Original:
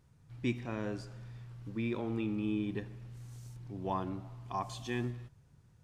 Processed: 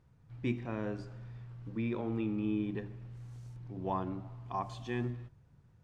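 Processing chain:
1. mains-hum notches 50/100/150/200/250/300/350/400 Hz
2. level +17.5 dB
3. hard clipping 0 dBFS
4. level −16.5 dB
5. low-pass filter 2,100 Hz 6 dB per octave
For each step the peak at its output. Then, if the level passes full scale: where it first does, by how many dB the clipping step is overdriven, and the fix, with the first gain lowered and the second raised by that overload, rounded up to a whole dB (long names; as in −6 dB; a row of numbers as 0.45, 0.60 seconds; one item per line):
−20.5, −3.0, −3.0, −19.5, −20.5 dBFS
no step passes full scale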